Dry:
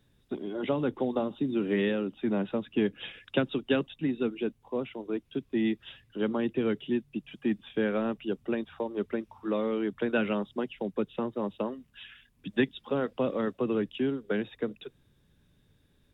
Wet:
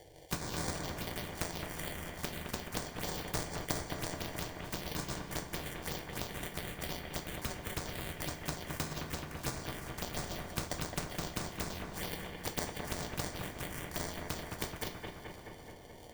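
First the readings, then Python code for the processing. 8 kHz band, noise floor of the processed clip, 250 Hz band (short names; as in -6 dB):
n/a, -51 dBFS, -14.5 dB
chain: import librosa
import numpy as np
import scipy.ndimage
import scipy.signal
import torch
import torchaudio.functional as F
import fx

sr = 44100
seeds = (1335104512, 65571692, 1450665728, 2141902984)

p1 = fx.bit_reversed(x, sr, seeds[0], block=256)
p2 = fx.env_lowpass_down(p1, sr, base_hz=700.0, full_db=-25.5)
p3 = fx.peak_eq(p2, sr, hz=3200.0, db=11.5, octaves=0.7)
p4 = fx.filter_lfo_bandpass(p3, sr, shape='saw_up', hz=2.8, low_hz=940.0, high_hz=1900.0, q=1.5)
p5 = fx.sample_hold(p4, sr, seeds[1], rate_hz=1300.0, jitter_pct=0)
p6 = fx.env_phaser(p5, sr, low_hz=200.0, high_hz=2900.0, full_db=-50.0)
p7 = p6 + fx.echo_bbd(p6, sr, ms=215, stages=4096, feedback_pct=59, wet_db=-7.5, dry=0)
p8 = fx.rev_double_slope(p7, sr, seeds[2], early_s=0.24, late_s=4.2, knee_db=-21, drr_db=4.5)
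p9 = fx.spectral_comp(p8, sr, ratio=2.0)
y = F.gain(torch.from_numpy(p9), 17.5).numpy()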